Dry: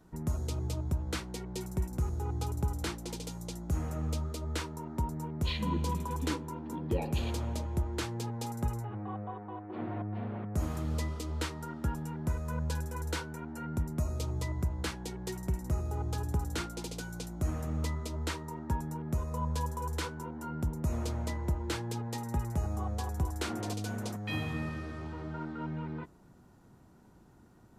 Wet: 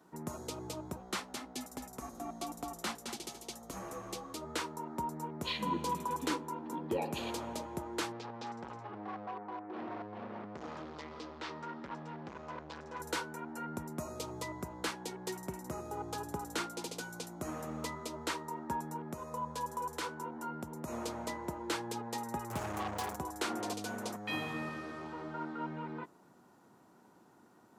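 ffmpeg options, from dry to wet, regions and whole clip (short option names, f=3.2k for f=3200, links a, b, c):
-filter_complex "[0:a]asettb=1/sr,asplit=3[a][b][c];[a]atrim=end=0.964[d];[b]atrim=start=0.96:end=4.35,asetpts=PTS-STARTPTS,afade=t=in:d=0.004:c=qsin,afade=t=out:st=3.386:d=0.004:c=qsin,afreqshift=-120,aecho=1:1:218:0.299,atrim=end_sample=149499[e];[c]atrim=start=4.346[f];[d][e]acrossfade=d=0.004:c1=hsin:c2=qsin[g];[g][f]acrossfade=d=0.004:c1=qsin:c2=hsin,asettb=1/sr,asplit=3[h][i][j];[h]atrim=end=8.124[k];[i]atrim=start=8.12:end=13,asetpts=PTS-STARTPTS,afade=t=in:d=0.004:c=qsin,afade=t=out:st=4.876:d=0.004:c=qsin,asoftclip=type=hard:threshold=-37.5dB,lowpass=f=5.2k:w=0.5412,lowpass=f=5.2k:w=1.3066[l];[j]atrim=start=12.996[m];[k][l]acrossfade=d=0.004:c1=hsin:c2=qsin[n];[n][m]acrossfade=d=0.004:c1=qsin:c2=hsin,asettb=1/sr,asplit=3[o][p][q];[o]atrim=end=19.034[r];[p]atrim=start=19.03:end=20.88,asetpts=PTS-STARTPTS,afade=t=in:d=0.004:c=qsin,afade=t=out:st=1.846:d=0.004:c=qsin,highpass=43,acompressor=threshold=-36dB:ratio=1.5:attack=3.2:release=140:knee=1:detection=peak[s];[q]atrim=start=20.876[t];[r][s]acrossfade=d=0.004:c1=hsin:c2=qsin[u];[u][t]acrossfade=d=0.004:c1=qsin:c2=hsin,asettb=1/sr,asplit=3[v][w][x];[v]atrim=end=22.504[y];[w]atrim=start=22.5:end=23.16,asetpts=PTS-STARTPTS,afade=t=in:d=0.004:c=qsin,afade=t=out:st=0.656:d=0.004:c=qsin,equalizer=f=110:w=3.8:g=10,acrusher=bits=5:mix=0:aa=0.5[z];[x]atrim=start=23.156[aa];[y][z]acrossfade=d=0.004:c1=hsin:c2=qsin[ab];[ab][aa]acrossfade=d=0.004:c1=qsin:c2=hsin,highpass=250,equalizer=f=1k:t=o:w=0.93:g=3.5"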